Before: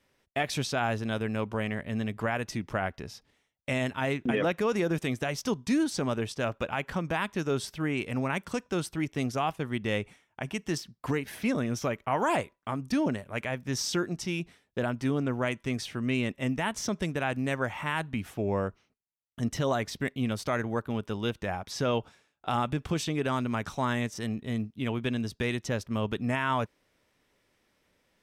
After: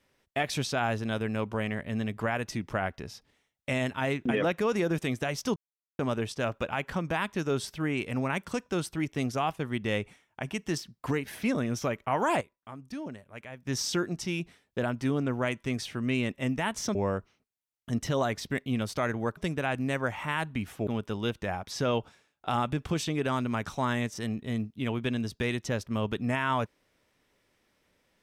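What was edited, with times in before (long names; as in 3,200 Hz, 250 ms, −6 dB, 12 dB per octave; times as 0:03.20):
0:05.56–0:05.99: silence
0:12.41–0:13.67: clip gain −11 dB
0:16.95–0:18.45: move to 0:20.87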